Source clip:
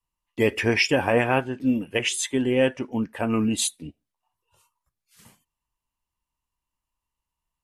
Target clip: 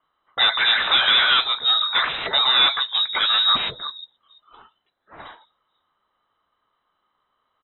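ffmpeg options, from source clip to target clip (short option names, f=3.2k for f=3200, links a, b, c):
-filter_complex "[0:a]equalizer=f=1.4k:w=1.3:g=-12,asplit=2[a][b];[b]highpass=f=720:p=1,volume=22dB,asoftclip=type=tanh:threshold=-8.5dB[c];[a][c]amix=inputs=2:normalize=0,lowpass=f=2.2k:p=1,volume=-6dB,acrossover=split=200|420|2900[d][e][f][g];[e]aecho=1:1:146|484:0.668|0.15[h];[g]aeval=exprs='0.15*sin(PI/2*7.94*val(0)/0.15)':c=same[i];[d][h][f][i]amix=inputs=4:normalize=0,lowpass=f=3.4k:t=q:w=0.5098,lowpass=f=3.4k:t=q:w=0.6013,lowpass=f=3.4k:t=q:w=0.9,lowpass=f=3.4k:t=q:w=2.563,afreqshift=-4000,volume=-1dB"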